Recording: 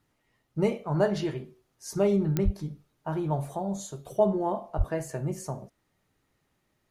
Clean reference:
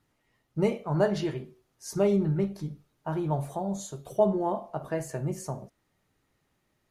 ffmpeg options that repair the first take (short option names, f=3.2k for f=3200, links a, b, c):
-filter_complex "[0:a]adeclick=t=4,asplit=3[a][b][c];[a]afade=t=out:st=2.44:d=0.02[d];[b]highpass=f=140:w=0.5412,highpass=f=140:w=1.3066,afade=t=in:st=2.44:d=0.02,afade=t=out:st=2.56:d=0.02[e];[c]afade=t=in:st=2.56:d=0.02[f];[d][e][f]amix=inputs=3:normalize=0,asplit=3[g][h][i];[g]afade=t=out:st=4.77:d=0.02[j];[h]highpass=f=140:w=0.5412,highpass=f=140:w=1.3066,afade=t=in:st=4.77:d=0.02,afade=t=out:st=4.89:d=0.02[k];[i]afade=t=in:st=4.89:d=0.02[l];[j][k][l]amix=inputs=3:normalize=0"